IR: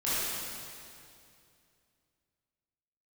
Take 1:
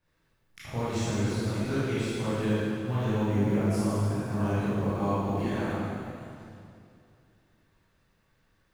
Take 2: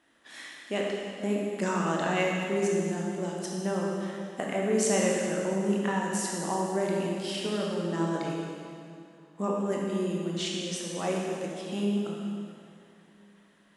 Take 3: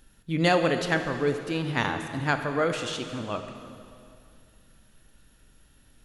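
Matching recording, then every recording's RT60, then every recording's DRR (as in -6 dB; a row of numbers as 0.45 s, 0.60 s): 1; 2.5 s, 2.5 s, 2.5 s; -12.5 dB, -2.5 dB, 6.5 dB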